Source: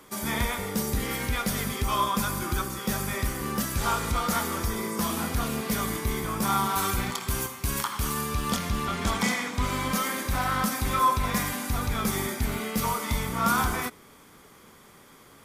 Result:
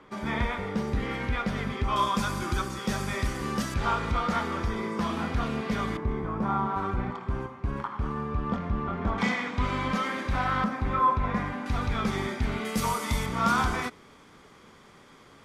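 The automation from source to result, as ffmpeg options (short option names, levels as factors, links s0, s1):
-af "asetnsamples=n=441:p=0,asendcmd='1.96 lowpass f 6100;3.74 lowpass f 3100;5.97 lowpass f 1200;9.18 lowpass f 3200;10.64 lowpass f 1700;11.66 lowpass f 3700;12.65 lowpass f 9700;13.26 lowpass f 5600',lowpass=2600"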